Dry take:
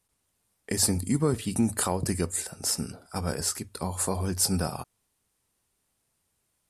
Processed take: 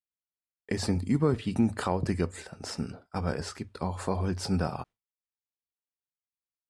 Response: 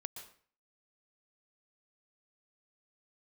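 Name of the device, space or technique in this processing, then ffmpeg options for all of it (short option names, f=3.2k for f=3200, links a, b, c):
hearing-loss simulation: -af "lowpass=3.4k,agate=range=-33dB:threshold=-42dB:ratio=3:detection=peak"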